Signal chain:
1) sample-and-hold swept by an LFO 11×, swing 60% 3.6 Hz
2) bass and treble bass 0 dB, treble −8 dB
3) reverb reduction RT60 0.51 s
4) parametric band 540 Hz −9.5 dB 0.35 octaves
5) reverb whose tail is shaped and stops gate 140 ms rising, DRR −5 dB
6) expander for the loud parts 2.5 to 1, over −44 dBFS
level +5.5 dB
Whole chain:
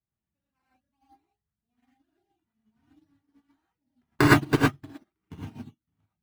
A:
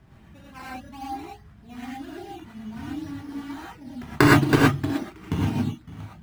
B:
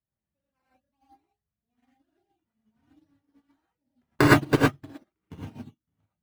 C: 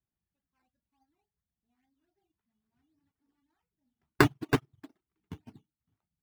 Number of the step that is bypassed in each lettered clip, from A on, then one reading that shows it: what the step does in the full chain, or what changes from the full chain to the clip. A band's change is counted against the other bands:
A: 6, change in crest factor −4.0 dB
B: 4, 500 Hz band +2.5 dB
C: 5, change in momentary loudness spread −4 LU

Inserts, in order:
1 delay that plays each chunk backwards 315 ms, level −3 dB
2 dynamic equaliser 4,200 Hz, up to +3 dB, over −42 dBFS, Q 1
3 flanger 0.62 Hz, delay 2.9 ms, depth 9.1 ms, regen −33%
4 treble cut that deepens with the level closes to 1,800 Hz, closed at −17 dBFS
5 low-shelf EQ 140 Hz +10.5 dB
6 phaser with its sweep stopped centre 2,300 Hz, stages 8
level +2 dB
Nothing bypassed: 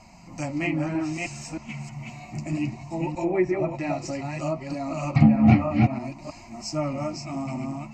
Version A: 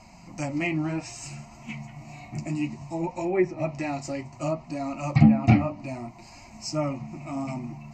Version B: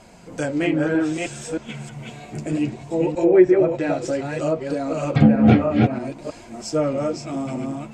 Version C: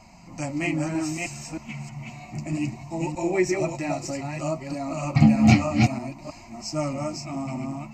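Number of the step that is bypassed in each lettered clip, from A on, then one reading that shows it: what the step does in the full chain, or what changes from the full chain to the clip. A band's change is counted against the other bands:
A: 1, change in momentary loudness spread +1 LU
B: 6, 500 Hz band +6.5 dB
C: 4, 8 kHz band +5.5 dB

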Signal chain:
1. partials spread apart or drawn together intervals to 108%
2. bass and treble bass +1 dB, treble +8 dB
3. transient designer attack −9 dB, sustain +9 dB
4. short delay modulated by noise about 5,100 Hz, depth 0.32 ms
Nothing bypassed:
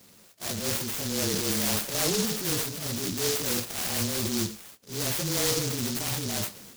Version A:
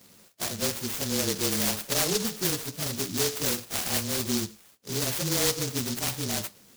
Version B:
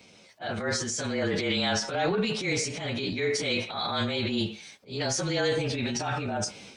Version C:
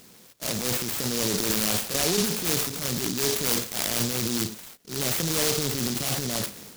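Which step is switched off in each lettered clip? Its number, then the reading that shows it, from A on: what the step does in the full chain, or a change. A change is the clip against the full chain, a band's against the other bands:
3, change in crest factor +1.5 dB
4, 8 kHz band −8.5 dB
1, change in crest factor +4.0 dB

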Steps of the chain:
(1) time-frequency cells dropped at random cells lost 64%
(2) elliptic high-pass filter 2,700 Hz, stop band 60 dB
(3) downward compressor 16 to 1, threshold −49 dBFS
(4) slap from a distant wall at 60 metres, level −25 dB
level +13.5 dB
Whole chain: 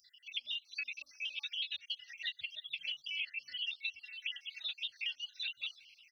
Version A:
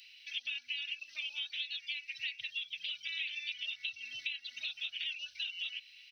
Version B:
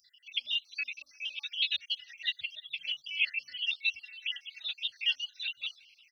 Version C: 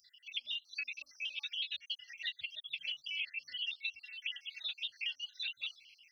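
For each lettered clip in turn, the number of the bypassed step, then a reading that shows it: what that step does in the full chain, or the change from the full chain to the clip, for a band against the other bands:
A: 1, change in momentary loudness spread −2 LU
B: 3, average gain reduction 3.5 dB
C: 4, echo-to-direct ratio −26.0 dB to none audible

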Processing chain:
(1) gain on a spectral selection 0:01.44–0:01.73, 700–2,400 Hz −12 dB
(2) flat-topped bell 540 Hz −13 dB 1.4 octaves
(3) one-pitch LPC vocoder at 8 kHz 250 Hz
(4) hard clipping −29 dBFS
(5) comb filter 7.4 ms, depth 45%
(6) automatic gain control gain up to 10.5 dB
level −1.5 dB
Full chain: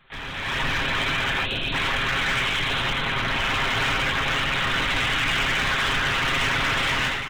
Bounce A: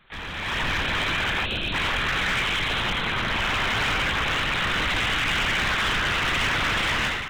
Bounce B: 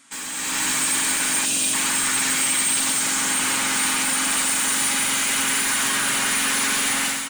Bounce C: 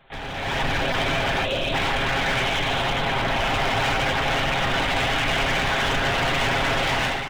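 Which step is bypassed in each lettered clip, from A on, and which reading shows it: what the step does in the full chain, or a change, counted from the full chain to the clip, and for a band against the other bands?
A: 5, change in crest factor −2.5 dB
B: 3, 8 kHz band +23.0 dB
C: 2, 500 Hz band +5.5 dB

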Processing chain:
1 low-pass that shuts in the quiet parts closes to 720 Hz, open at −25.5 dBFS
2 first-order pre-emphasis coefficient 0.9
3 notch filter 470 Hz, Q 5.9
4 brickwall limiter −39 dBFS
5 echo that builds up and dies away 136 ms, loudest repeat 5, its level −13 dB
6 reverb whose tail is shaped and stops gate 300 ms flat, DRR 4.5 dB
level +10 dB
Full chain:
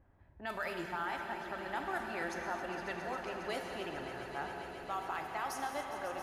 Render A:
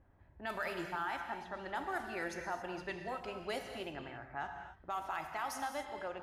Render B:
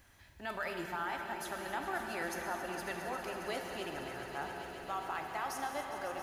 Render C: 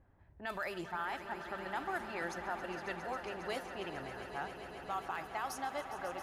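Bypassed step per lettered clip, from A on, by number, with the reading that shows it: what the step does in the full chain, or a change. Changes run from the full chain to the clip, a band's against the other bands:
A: 5, echo-to-direct ratio −0.5 dB to −4.5 dB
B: 1, 8 kHz band +4.0 dB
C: 6, echo-to-direct ratio −0.5 dB to −3.5 dB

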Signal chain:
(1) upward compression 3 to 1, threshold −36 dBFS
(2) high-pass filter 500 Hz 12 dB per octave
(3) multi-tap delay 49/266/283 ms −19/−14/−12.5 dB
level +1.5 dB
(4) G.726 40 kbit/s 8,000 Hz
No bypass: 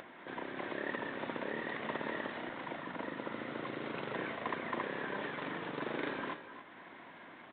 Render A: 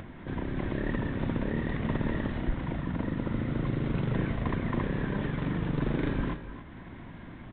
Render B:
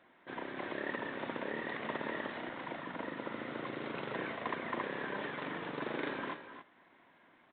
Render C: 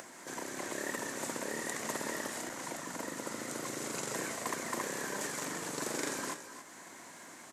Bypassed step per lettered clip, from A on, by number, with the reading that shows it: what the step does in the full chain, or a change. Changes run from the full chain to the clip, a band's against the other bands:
2, 125 Hz band +22.0 dB
1, change in momentary loudness spread −8 LU
4, 4 kHz band +5.0 dB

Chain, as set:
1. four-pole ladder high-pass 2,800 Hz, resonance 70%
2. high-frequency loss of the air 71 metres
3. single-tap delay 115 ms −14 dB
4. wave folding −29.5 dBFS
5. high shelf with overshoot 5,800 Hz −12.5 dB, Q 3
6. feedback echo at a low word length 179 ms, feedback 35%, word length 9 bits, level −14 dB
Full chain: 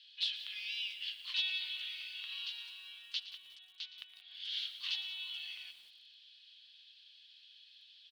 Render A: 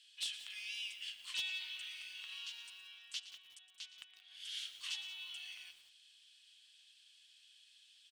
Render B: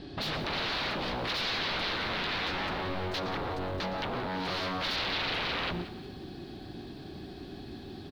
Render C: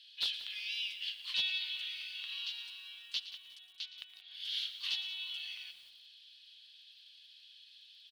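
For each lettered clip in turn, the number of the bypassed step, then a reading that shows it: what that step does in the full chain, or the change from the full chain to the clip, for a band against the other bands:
5, change in crest factor −2.0 dB
1, 1 kHz band +24.5 dB
2, 8 kHz band +2.5 dB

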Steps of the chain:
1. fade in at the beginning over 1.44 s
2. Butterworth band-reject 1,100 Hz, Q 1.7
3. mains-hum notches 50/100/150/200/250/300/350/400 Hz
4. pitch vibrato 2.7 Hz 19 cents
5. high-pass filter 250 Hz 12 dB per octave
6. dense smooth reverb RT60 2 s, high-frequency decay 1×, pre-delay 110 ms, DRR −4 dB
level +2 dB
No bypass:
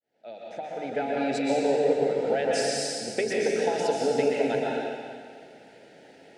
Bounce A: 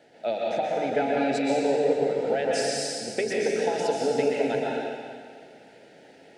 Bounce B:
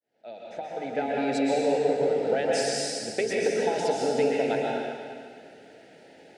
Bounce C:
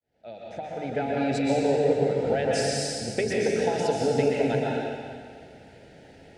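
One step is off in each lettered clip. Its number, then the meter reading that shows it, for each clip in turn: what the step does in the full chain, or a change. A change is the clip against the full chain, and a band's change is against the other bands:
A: 1, change in momentary loudness spread −7 LU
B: 4, change in crest factor −1.5 dB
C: 5, 125 Hz band +10.5 dB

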